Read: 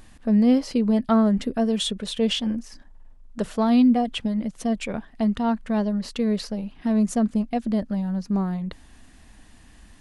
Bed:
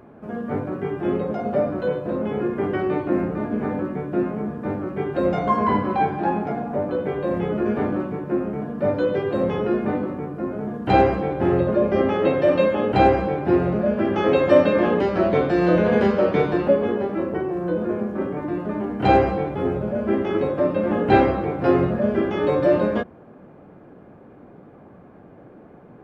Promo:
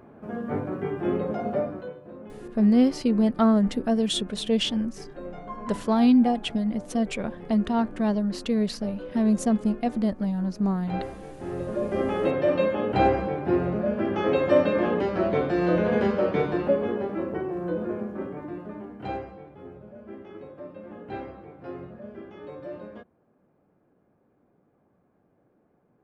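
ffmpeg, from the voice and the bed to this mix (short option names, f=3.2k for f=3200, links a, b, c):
-filter_complex "[0:a]adelay=2300,volume=-1dB[a];[1:a]volume=9.5dB,afade=t=out:st=1.44:d=0.49:silence=0.188365,afade=t=in:st=11.39:d=0.78:silence=0.237137,afade=t=out:st=17.72:d=1.56:silence=0.16788[b];[a][b]amix=inputs=2:normalize=0"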